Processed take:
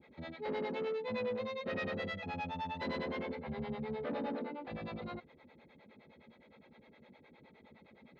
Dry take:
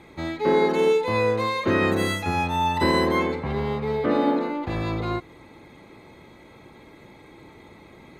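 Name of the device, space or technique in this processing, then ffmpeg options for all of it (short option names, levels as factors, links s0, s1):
guitar amplifier with harmonic tremolo: -filter_complex "[0:a]asettb=1/sr,asplit=3[s0][s1][s2];[s0]atrim=end=1.394[s3];[s1]atrim=start=1.39:end=2.24,asetpts=PTS-STARTPTS,afade=t=in:d=0.004:c=qsin,afade=t=out:st=0.846:d=0.004:c=qsin,aecho=1:1:1.6:0.42,atrim=end_sample=37485[s4];[s2]atrim=start=2.236[s5];[s3][s4]acrossfade=d=0.004:c1=hsin:c2=qsin[s6];[s6][s5]acrossfade=d=0.004:c1=qsin:c2=hsin,acrossover=split=440[s7][s8];[s7]aeval=exprs='val(0)*(1-1/2+1/2*cos(2*PI*9.7*n/s))':c=same[s9];[s8]aeval=exprs='val(0)*(1-1/2-1/2*cos(2*PI*9.7*n/s))':c=same[s10];[s9][s10]amix=inputs=2:normalize=0,asoftclip=type=tanh:threshold=0.0531,highpass=79,equalizer=f=110:t=q:w=4:g=-9,equalizer=f=230:t=q:w=4:g=8,equalizer=f=320:t=q:w=4:g=-9,equalizer=f=530:t=q:w=4:g=5,equalizer=f=1100:t=q:w=4:g=-6,lowpass=f=4300:w=0.5412,lowpass=f=4300:w=1.3066,volume=0.398"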